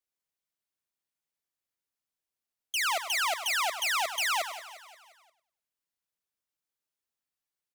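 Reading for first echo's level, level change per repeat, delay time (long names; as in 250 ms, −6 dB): −12.0 dB, repeats not evenly spaced, 100 ms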